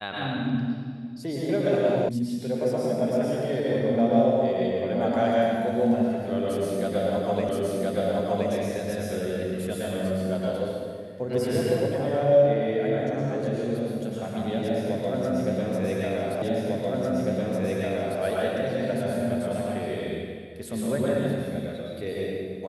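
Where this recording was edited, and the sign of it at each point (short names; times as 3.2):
2.09 sound cut off
7.49 repeat of the last 1.02 s
16.42 repeat of the last 1.8 s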